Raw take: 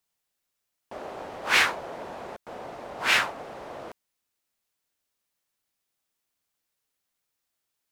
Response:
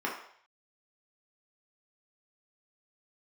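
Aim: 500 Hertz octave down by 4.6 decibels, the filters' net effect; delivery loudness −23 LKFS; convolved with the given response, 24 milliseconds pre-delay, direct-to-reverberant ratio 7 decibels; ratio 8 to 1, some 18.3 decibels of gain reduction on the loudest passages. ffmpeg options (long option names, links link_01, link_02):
-filter_complex "[0:a]equalizer=frequency=500:width_type=o:gain=-6,acompressor=threshold=-36dB:ratio=8,asplit=2[link_01][link_02];[1:a]atrim=start_sample=2205,adelay=24[link_03];[link_02][link_03]afir=irnorm=-1:irlink=0,volume=-15dB[link_04];[link_01][link_04]amix=inputs=2:normalize=0,volume=17.5dB"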